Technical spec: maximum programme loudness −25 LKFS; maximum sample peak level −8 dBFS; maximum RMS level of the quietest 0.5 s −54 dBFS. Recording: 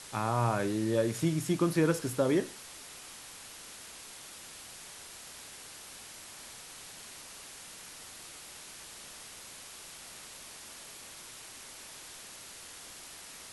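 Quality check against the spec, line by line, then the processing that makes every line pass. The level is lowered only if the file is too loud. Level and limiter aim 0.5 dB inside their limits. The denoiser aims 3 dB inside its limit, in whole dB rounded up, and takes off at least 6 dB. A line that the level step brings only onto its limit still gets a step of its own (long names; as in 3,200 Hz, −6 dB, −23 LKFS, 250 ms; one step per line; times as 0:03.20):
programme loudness −36.5 LKFS: in spec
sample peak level −14.5 dBFS: in spec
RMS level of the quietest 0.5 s −48 dBFS: out of spec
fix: broadband denoise 9 dB, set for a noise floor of −48 dBFS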